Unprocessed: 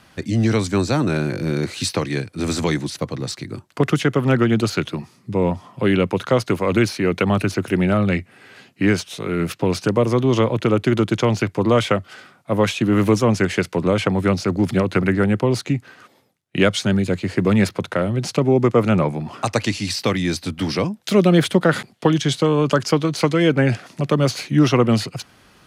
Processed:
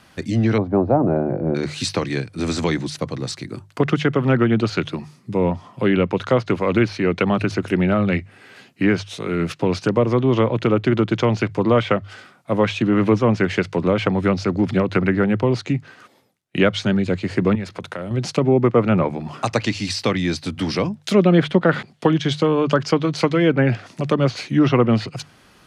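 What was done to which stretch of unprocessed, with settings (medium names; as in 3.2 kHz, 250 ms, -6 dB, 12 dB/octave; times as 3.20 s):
0.58–1.55 s: resonant low-pass 720 Hz, resonance Q 2.9
17.55–18.11 s: compression, threshold -25 dBFS
whole clip: hum notches 50/100/150 Hz; low-pass that closes with the level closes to 2.8 kHz, closed at -12.5 dBFS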